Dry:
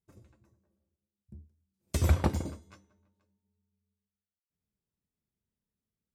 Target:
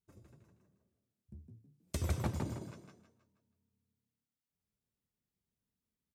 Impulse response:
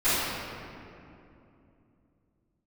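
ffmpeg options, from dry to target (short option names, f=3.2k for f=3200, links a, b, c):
-filter_complex "[0:a]acompressor=threshold=-34dB:ratio=2,asplit=5[a][b][c][d][e];[b]adelay=159,afreqshift=34,volume=-4.5dB[f];[c]adelay=318,afreqshift=68,volume=-14.1dB[g];[d]adelay=477,afreqshift=102,volume=-23.8dB[h];[e]adelay=636,afreqshift=136,volume=-33.4dB[i];[a][f][g][h][i]amix=inputs=5:normalize=0,volume=-3dB"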